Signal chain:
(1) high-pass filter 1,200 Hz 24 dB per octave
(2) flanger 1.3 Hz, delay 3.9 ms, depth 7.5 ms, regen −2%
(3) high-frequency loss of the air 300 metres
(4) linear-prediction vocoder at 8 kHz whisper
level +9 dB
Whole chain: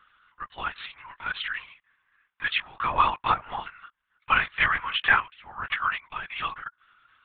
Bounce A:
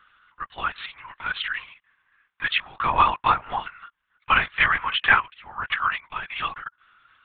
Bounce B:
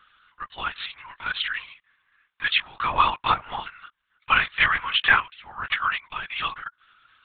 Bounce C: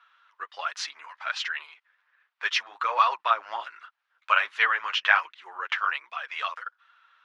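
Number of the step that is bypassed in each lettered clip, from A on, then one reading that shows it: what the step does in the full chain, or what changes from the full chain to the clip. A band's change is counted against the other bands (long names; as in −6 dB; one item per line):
2, change in integrated loudness +3.0 LU
3, 4 kHz band +4.5 dB
4, 500 Hz band +2.0 dB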